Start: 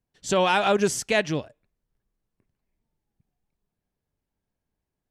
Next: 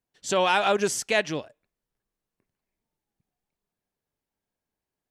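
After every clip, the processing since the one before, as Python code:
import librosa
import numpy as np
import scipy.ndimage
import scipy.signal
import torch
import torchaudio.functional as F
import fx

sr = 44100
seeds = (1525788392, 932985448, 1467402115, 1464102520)

y = fx.low_shelf(x, sr, hz=200.0, db=-11.5)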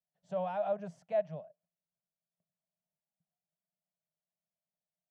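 y = fx.double_bandpass(x, sr, hz=330.0, octaves=1.9)
y = F.gain(torch.from_numpy(y), -2.5).numpy()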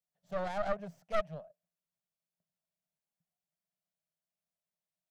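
y = fx.tracing_dist(x, sr, depth_ms=0.47)
y = F.gain(torch.from_numpy(y), -1.5).numpy()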